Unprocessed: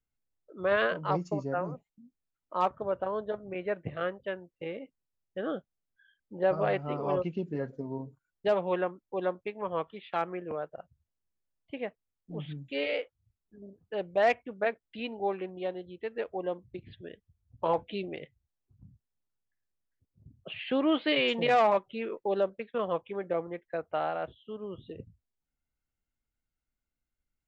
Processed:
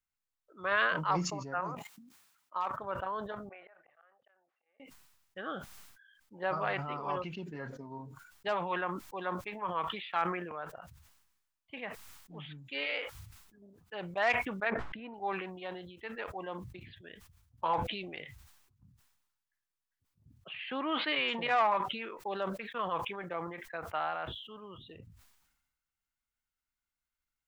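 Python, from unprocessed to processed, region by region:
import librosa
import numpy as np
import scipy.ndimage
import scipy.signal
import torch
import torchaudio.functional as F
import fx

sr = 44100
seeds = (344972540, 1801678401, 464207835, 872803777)

y = fx.chain(x, sr, fx.highpass(hz=240.0, slope=6),
    fx.level_steps(step_db=11), at=(1.6, 2.78))
y = fx.chain(y, sr, fx.auto_swell(attack_ms=561.0),
    fx.ladder_bandpass(hz=910.0, resonance_pct=50),
    fx.peak_eq(hz=960.0, db=-13.5, octaves=0.29), at=(3.49, 4.8))
y = fx.chain(y, sr, fx.lowpass(hz=1200.0, slope=12),
    fx.sustainer(db_per_s=34.0), at=(14.7, 15.14))
y = fx.chain(y, sr, fx.highpass(hz=140.0, slope=12),
    fx.high_shelf(hz=3600.0, db=-9.5), at=(20.49, 21.89))
y = fx.low_shelf_res(y, sr, hz=740.0, db=-9.0, q=1.5)
y = fx.sustainer(y, sr, db_per_s=51.0)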